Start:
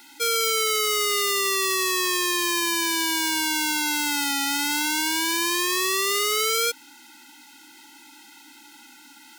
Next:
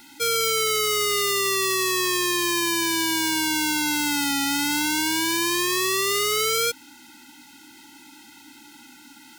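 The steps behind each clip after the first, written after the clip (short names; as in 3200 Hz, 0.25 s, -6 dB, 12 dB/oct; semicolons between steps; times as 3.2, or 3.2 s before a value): tone controls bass +13 dB, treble 0 dB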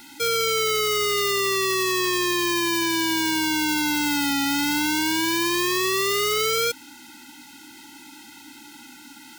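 hard clip -16.5 dBFS, distortion -9 dB; gain +3 dB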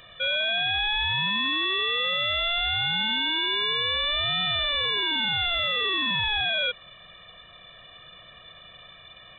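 inverted band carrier 3800 Hz; gain -2 dB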